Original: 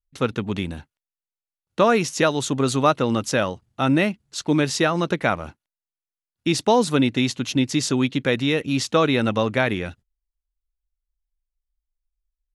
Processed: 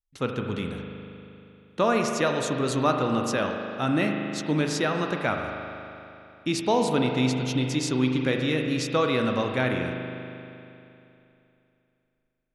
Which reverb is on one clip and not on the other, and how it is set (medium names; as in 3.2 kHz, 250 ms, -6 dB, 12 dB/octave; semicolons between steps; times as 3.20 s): spring tank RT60 2.9 s, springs 39 ms, chirp 75 ms, DRR 2.5 dB; trim -6 dB